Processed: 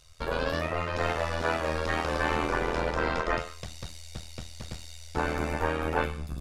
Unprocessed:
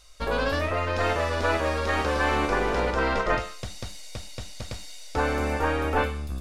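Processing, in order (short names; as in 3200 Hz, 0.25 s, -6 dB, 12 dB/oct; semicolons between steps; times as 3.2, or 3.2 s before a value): AM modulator 82 Hz, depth 75%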